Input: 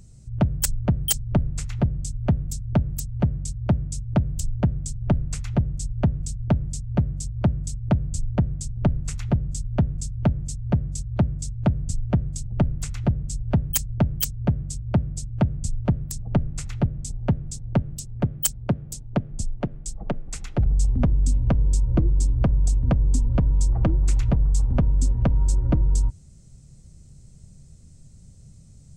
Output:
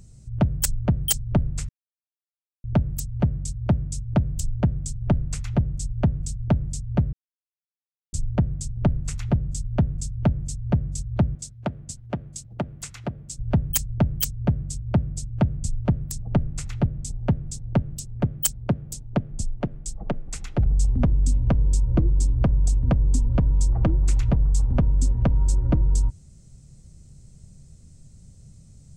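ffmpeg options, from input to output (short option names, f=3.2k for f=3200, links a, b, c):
-filter_complex "[0:a]asettb=1/sr,asplit=3[a][b][c];[a]atrim=end=11.354[d];[b]atrim=start=11.35:end=13.39,asetpts=PTS-STARTPTS,afade=t=in:d=0.004:c=qsin,afade=t=out:st=2.036:d=0.004:c=qsin,highpass=f=400:p=1[e];[c]atrim=start=13.386[f];[d][e]acrossfade=d=0.004:c1=hsin:c2=qsin[g];[g][f]acrossfade=d=0.004:c1=qsin:c2=hsin,asplit=5[h][i][j][k][l];[h]atrim=end=1.69,asetpts=PTS-STARTPTS,afade=t=out:st=1.686:d=0.004:c=hsin[m];[i]atrim=start=1.69:end=2.64,asetpts=PTS-STARTPTS,volume=0[n];[j]atrim=start=2.64:end=7.13,asetpts=PTS-STARTPTS,afade=t=in:d=0.004:c=hsin,afade=t=out:st=4.486:d=0.004:c=hsin[o];[k]atrim=start=7.13:end=8.13,asetpts=PTS-STARTPTS,volume=0[p];[l]atrim=start=8.13,asetpts=PTS-STARTPTS,afade=t=in:d=0.004:c=hsin[q];[m][n][o][p][q]concat=n=5:v=0:a=1"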